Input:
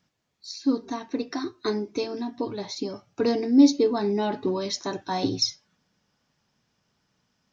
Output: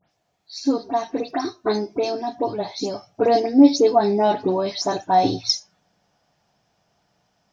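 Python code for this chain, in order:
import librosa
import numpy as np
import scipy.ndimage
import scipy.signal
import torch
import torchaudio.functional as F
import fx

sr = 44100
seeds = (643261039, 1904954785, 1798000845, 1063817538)

y = fx.spec_delay(x, sr, highs='late', ms=106)
y = fx.peak_eq(y, sr, hz=700.0, db=13.0, octaves=0.51)
y = y * 10.0 ** (3.5 / 20.0)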